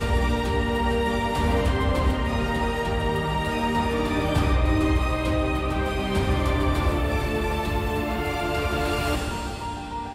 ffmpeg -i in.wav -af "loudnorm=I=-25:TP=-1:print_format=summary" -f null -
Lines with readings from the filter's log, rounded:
Input Integrated:    -25.1 LUFS
Input True Peak:     -11.3 dBTP
Input LRA:             3.0 LU
Input Threshold:     -35.1 LUFS